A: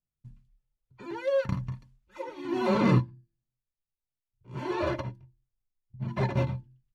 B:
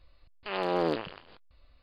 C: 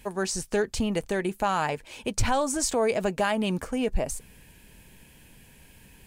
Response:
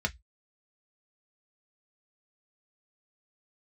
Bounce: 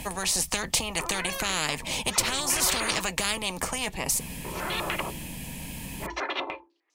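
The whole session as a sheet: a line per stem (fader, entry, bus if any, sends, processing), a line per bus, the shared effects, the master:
−1.0 dB, 0.00 s, send −16 dB, upward compression, threshold −37 dBFS; Chebyshev high-pass with heavy ripple 300 Hz, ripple 3 dB; low-pass on a step sequencer 10 Hz 800–6,100 Hz
muted
+1.5 dB, 0.00 s, send −20 dB, low shelf with overshoot 270 Hz +10.5 dB, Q 3; downward compressor 3 to 1, threshold −16 dBFS, peak gain reduction 7 dB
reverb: on, RT60 0.10 s, pre-delay 3 ms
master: parametric band 1,500 Hz −12.5 dB 0.46 octaves; every bin compressed towards the loudest bin 10 to 1

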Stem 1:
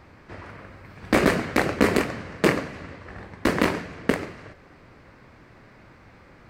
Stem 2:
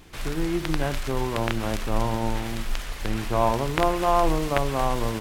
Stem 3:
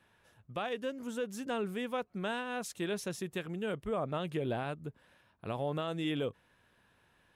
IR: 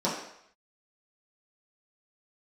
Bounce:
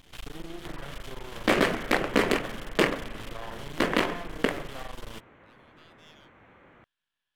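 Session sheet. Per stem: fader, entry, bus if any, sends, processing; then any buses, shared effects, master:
−2.0 dB, 0.35 s, no bus, no send, adaptive Wiener filter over 9 samples; low-shelf EQ 160 Hz −11 dB
−3.0 dB, 0.00 s, bus A, no send, soft clipping −18 dBFS, distortion −12 dB
−13.5 dB, 0.00 s, bus A, no send, high-pass filter 1,100 Hz 24 dB per octave
bus A: 0.0 dB, half-wave rectification; downward compressor, threshold −34 dBFS, peak gain reduction 9 dB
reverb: not used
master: parametric band 3,200 Hz +7.5 dB 0.4 octaves

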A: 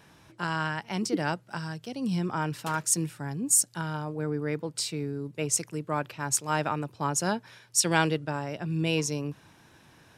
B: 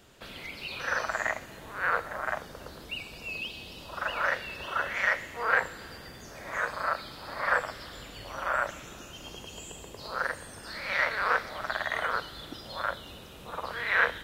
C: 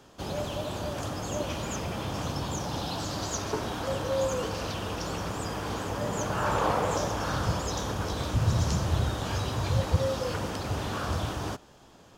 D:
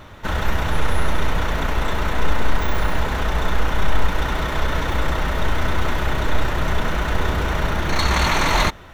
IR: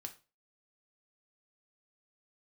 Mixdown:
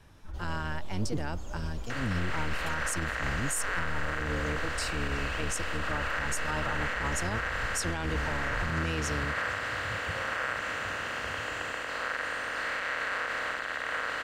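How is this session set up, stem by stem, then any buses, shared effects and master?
−5.0 dB, 0.00 s, no send, sub-octave generator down 1 octave, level +3 dB
−11.5 dB, 1.90 s, no send, compressor on every frequency bin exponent 0.2
−17.5 dB, 0.15 s, send −6 dB, no processing
−16.0 dB, 0.00 s, no send, expanding power law on the bin magnitudes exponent 2.1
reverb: on, RT60 0.30 s, pre-delay 3 ms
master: brickwall limiter −21 dBFS, peak gain reduction 10 dB

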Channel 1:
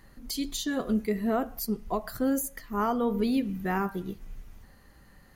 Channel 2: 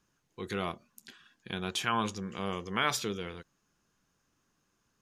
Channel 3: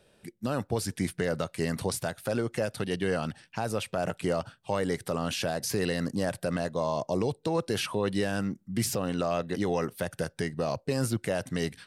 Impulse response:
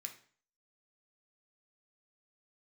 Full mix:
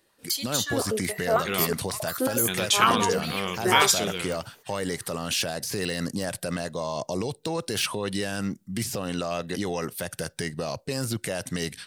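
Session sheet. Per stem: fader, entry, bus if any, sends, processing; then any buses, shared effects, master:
−1.5 dB, 0.00 s, no send, high-pass on a step sequencer 11 Hz 350–1,900 Hz
+2.5 dB, 0.95 s, send −7 dB, low-pass that shuts in the quiet parts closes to 430 Hz, open at −30.5 dBFS
+2.0 dB, 0.00 s, no send, de-essing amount 75%; brickwall limiter −22 dBFS, peak gain reduction 5 dB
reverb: on, RT60 0.45 s, pre-delay 3 ms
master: noise gate −53 dBFS, range −14 dB; high-shelf EQ 2,500 Hz +10.5 dB

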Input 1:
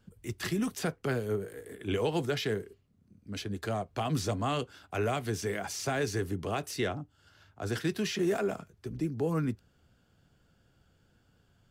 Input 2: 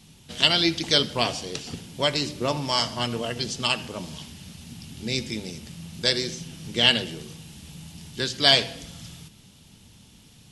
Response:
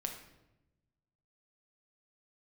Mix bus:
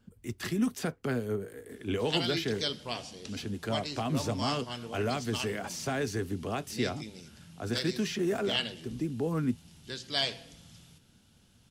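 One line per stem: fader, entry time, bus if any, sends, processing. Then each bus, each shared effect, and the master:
−1.5 dB, 0.00 s, no send, parametric band 240 Hz +8 dB 0.28 octaves
−12.5 dB, 1.70 s, no send, no processing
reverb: not used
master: no processing

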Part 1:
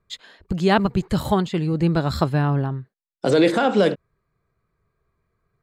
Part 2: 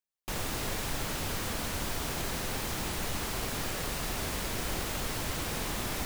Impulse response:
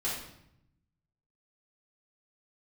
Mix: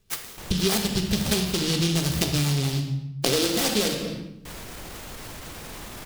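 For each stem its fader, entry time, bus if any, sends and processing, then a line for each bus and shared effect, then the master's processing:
+1.5 dB, 0.00 s, send −6 dB, short delay modulated by noise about 3,900 Hz, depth 0.3 ms
0.0 dB, 0.10 s, muted 0:02.80–0:04.45, no send, brickwall limiter −29.5 dBFS, peak gain reduction 8.5 dB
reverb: on, RT60 0.75 s, pre-delay 3 ms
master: downward compressor 6 to 1, threshold −21 dBFS, peak gain reduction 14 dB

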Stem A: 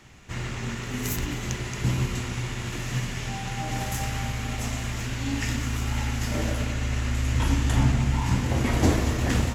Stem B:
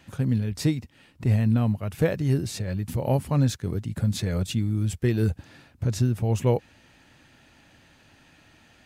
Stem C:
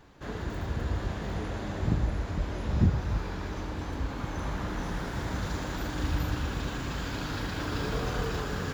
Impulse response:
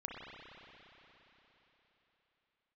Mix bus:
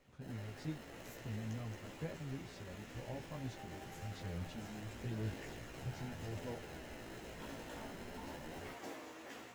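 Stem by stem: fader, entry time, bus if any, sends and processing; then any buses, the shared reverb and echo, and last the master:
−19.5 dB, 0.00 s, send −4.5 dB, high-pass filter 430 Hz 12 dB per octave; high-shelf EQ 4,300 Hz −7 dB; noise that follows the level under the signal 18 dB
−18.5 dB, 0.00 s, no send, low-pass filter 5,400 Hz
−3.0 dB, 0.00 s, no send, high-pass filter 1,500 Hz 12 dB per octave; decimation without filtering 38×; wrap-around overflow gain 38.5 dB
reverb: on, RT60 3.9 s, pre-delay 31 ms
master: multi-voice chorus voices 2, 0.47 Hz, delay 15 ms, depth 3.7 ms

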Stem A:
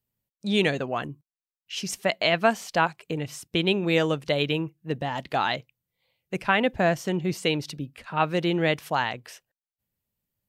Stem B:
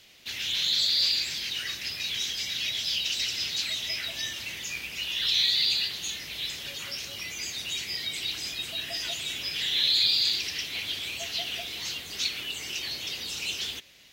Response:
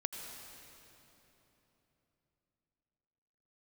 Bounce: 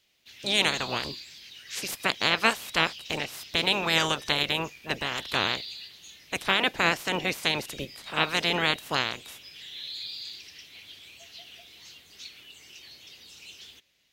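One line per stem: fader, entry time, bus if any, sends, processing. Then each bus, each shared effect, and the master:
−1.5 dB, 0.00 s, no send, ceiling on every frequency bin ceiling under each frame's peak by 27 dB
−14.5 dB, 0.00 s, no send, no processing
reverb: not used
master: no processing

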